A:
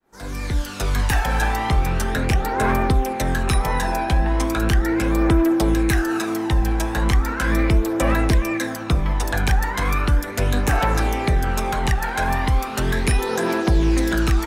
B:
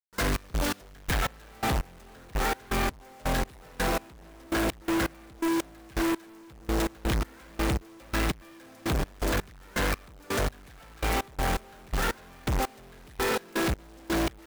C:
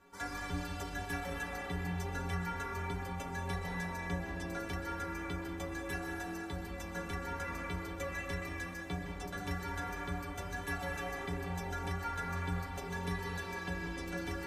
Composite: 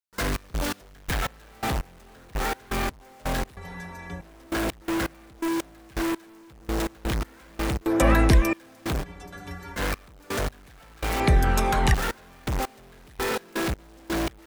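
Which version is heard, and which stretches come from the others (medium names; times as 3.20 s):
B
3.57–4.21 s: from C
7.86–8.53 s: from A
9.03–9.77 s: from C, crossfade 0.10 s
11.20–11.94 s: from A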